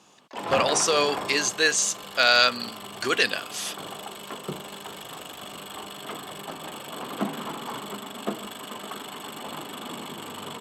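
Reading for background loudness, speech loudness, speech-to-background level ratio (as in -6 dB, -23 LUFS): -35.0 LUFS, -22.5 LUFS, 12.5 dB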